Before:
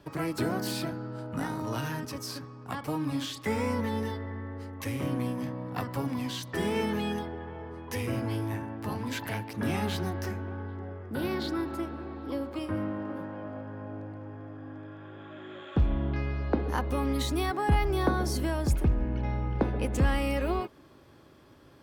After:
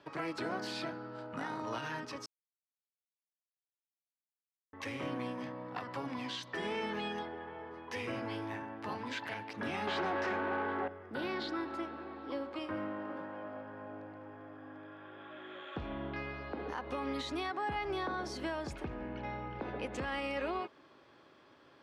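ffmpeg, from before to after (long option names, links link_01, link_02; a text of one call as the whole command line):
ffmpeg -i in.wav -filter_complex "[0:a]asettb=1/sr,asplit=3[link_01][link_02][link_03];[link_01]atrim=end=9.874[link_04];[link_02]atrim=start=9.87:end=10.88,asetpts=PTS-STARTPTS,afade=type=in:duration=0.004:curve=qsin,afade=type=out:start_time=1.006:duration=0.004:curve=qsin,asplit=2[link_05][link_06];[link_06]highpass=frequency=720:poles=1,volume=27dB,asoftclip=type=tanh:threshold=-19dB[link_07];[link_05][link_07]amix=inputs=2:normalize=0,lowpass=frequency=1100:poles=1,volume=-6dB[link_08];[link_03]atrim=start=10.876[link_09];[link_04][link_08]acrossfade=duration=0.004:curve1=hsin:curve2=qsin[link_10];[link_10][link_09]acrossfade=duration=0.004:curve1=qsin:curve2=hsin,asplit=3[link_11][link_12][link_13];[link_11]atrim=end=2.26,asetpts=PTS-STARTPTS,afade=type=out:start_time=2.256:duration=0.004:curve=hsin[link_14];[link_12]atrim=start=2.26:end=4.73,asetpts=PTS-STARTPTS,volume=0[link_15];[link_13]atrim=start=4.73,asetpts=PTS-STARTPTS,afade=type=in:duration=0.004:curve=hsin[link_16];[link_14][link_15][link_16]concat=n=3:v=0:a=1,highpass=frequency=630:poles=1,alimiter=level_in=3.5dB:limit=-24dB:level=0:latency=1:release=87,volume=-3.5dB,lowpass=4200" out.wav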